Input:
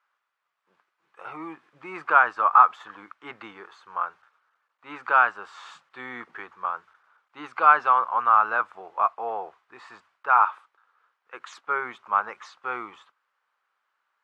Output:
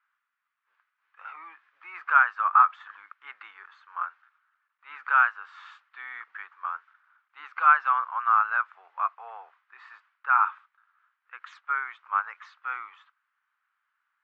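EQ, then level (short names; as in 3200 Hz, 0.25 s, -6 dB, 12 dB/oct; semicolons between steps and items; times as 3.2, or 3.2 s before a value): ladder band-pass 1900 Hz, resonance 30%; +8.5 dB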